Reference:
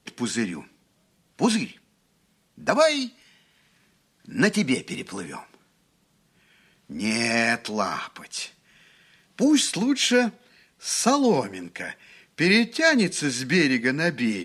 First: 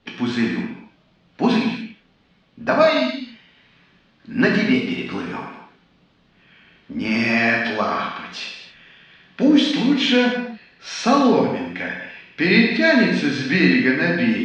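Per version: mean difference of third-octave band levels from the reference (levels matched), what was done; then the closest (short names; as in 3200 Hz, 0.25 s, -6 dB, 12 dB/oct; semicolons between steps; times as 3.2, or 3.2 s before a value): 7.5 dB: LPF 4000 Hz 24 dB/oct; in parallel at -3 dB: compressor, threshold -33 dBFS, peak gain reduction 18 dB; on the sum: non-linear reverb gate 0.31 s falling, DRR -1.5 dB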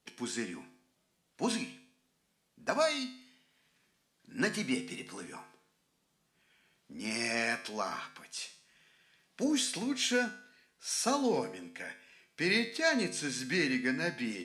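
2.5 dB: tone controls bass -4 dB, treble +1 dB; notches 50/100/150/200 Hz; resonator 51 Hz, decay 0.59 s, harmonics odd, mix 70%; gain -1.5 dB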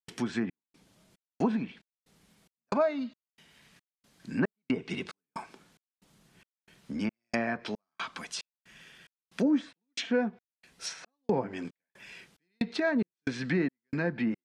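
12.0 dB: step gate ".xxxxx.." 182 bpm -60 dB; compressor 1.5:1, threshold -38 dBFS, peak gain reduction 9 dB; treble ducked by the level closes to 1300 Hz, closed at -26.5 dBFS; gain +1.5 dB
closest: second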